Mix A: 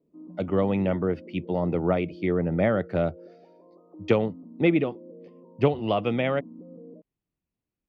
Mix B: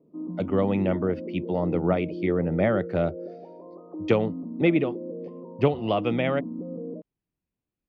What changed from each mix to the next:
background +10.0 dB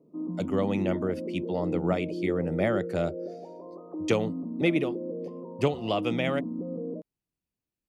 speech −4.5 dB
master: remove high-frequency loss of the air 300 metres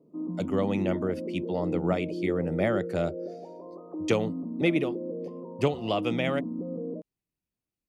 nothing changed

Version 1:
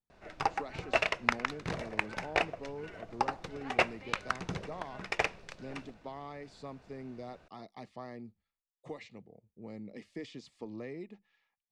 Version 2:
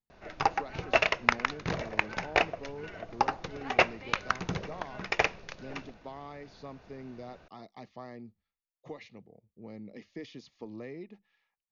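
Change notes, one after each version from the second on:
background +4.0 dB
master: add linear-phase brick-wall low-pass 6,900 Hz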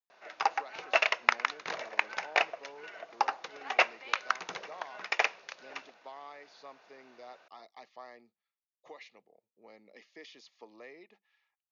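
master: add high-pass filter 670 Hz 12 dB per octave

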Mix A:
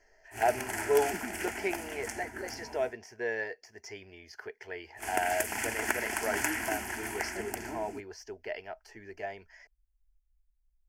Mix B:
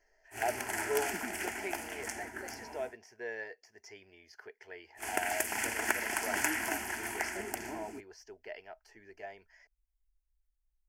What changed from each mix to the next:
speech −6.5 dB
master: add low-shelf EQ 190 Hz −7 dB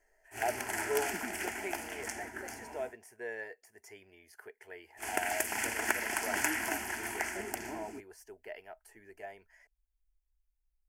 speech: add high shelf with overshoot 7,200 Hz +11.5 dB, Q 3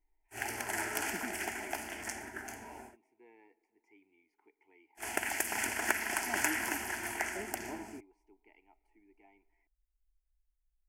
speech: add formant filter u
reverb: on, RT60 2.6 s

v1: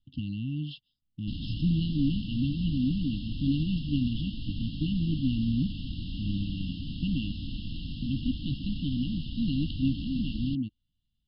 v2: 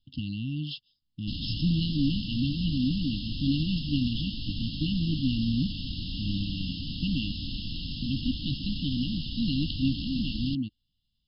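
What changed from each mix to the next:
master: remove high-frequency loss of the air 300 metres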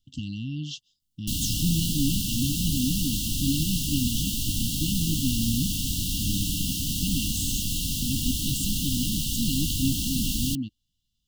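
background +5.0 dB
master: remove linear-phase brick-wall low-pass 5,300 Hz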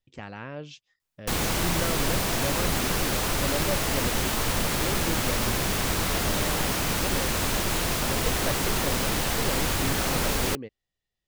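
speech −10.0 dB
master: remove linear-phase brick-wall band-stop 310–2,700 Hz

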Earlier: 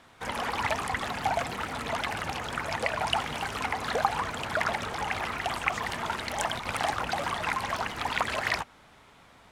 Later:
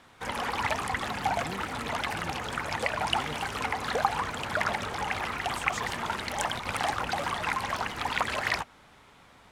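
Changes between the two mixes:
speech +6.5 dB
master: add notch filter 660 Hz, Q 20

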